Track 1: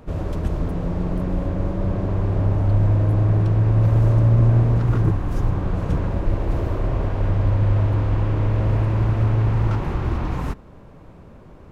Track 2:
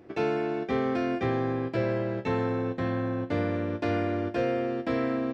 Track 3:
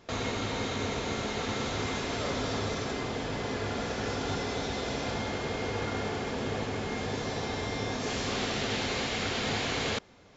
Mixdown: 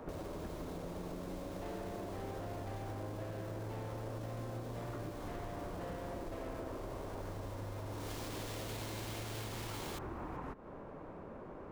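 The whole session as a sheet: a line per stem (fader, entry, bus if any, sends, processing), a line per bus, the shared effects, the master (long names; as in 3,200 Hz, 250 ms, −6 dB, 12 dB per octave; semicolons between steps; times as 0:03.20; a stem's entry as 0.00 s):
+1.0 dB, 0.00 s, no send, three-way crossover with the lows and the highs turned down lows −13 dB, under 240 Hz, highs −13 dB, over 2,000 Hz; downward compressor, threshold −35 dBFS, peak gain reduction 13 dB
−15.0 dB, 1.45 s, no send, parametric band 740 Hz +15 dB 1.4 octaves; soft clipping −23.5 dBFS, distortion −8 dB
0:07.86 −23 dB → 0:08.08 −13.5 dB, 0.00 s, no send, each half-wave held at its own peak; high-shelf EQ 2,200 Hz +8.5 dB; brickwall limiter −15 dBFS, peak gain reduction 5.5 dB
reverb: not used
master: downward compressor 2.5 to 1, threshold −43 dBFS, peak gain reduction 8.5 dB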